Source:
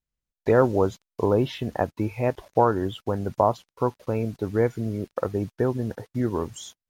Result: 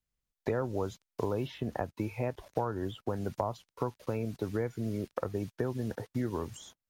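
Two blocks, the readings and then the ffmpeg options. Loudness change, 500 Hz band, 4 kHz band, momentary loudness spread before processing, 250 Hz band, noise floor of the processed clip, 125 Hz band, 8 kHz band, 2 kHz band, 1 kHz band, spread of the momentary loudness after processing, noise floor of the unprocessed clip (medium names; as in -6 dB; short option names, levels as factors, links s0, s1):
-10.0 dB, -11.0 dB, -8.5 dB, 8 LU, -8.5 dB, under -85 dBFS, -8.0 dB, no reading, -9.0 dB, -12.0 dB, 4 LU, under -85 dBFS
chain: -filter_complex "[0:a]acrossover=split=130|1700[s0][s1][s2];[s0]acompressor=threshold=0.00794:ratio=4[s3];[s1]acompressor=threshold=0.0251:ratio=4[s4];[s2]acompressor=threshold=0.00316:ratio=4[s5];[s3][s4][s5]amix=inputs=3:normalize=0"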